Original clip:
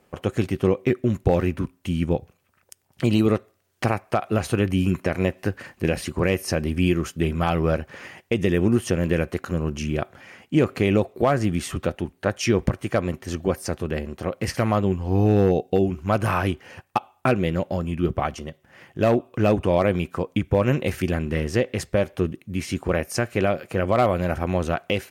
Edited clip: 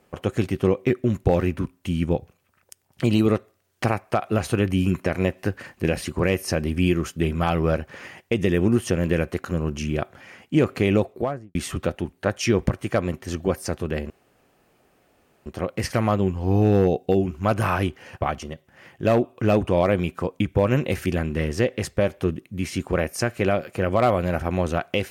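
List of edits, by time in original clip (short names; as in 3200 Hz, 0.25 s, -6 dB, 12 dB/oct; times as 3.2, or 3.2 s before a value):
11–11.55 studio fade out
14.1 insert room tone 1.36 s
16.85–18.17 cut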